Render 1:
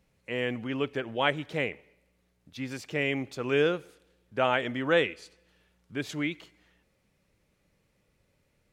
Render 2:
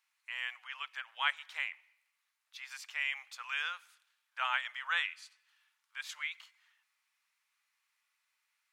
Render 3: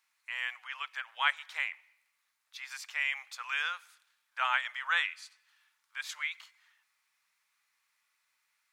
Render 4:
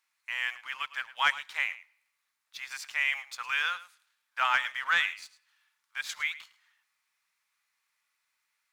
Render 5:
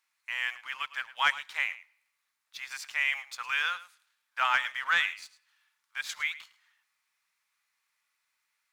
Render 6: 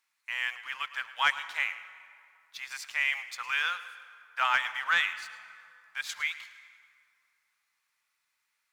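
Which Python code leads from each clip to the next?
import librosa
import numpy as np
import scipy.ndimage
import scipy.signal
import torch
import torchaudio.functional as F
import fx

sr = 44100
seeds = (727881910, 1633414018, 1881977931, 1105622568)

y1 = scipy.signal.sosfilt(scipy.signal.butter(6, 980.0, 'highpass', fs=sr, output='sos'), x)
y1 = F.gain(torch.from_numpy(y1), -3.0).numpy()
y2 = fx.peak_eq(y1, sr, hz=2900.0, db=-3.5, octaves=0.38)
y2 = F.gain(torch.from_numpy(y2), 4.0).numpy()
y3 = fx.leveller(y2, sr, passes=1)
y3 = y3 + 10.0 ** (-16.5 / 20.0) * np.pad(y3, (int(107 * sr / 1000.0), 0))[:len(y3)]
y4 = y3
y5 = fx.rev_plate(y4, sr, seeds[0], rt60_s=2.5, hf_ratio=0.6, predelay_ms=100, drr_db=14.5)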